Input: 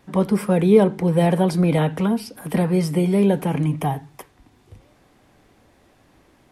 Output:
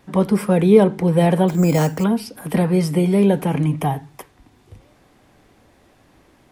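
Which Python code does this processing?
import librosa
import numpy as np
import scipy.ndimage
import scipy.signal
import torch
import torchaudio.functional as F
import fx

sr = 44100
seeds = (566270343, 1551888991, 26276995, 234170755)

y = fx.resample_bad(x, sr, factor=6, down='filtered', up='hold', at=(1.48, 2.04))
y = F.gain(torch.from_numpy(y), 2.0).numpy()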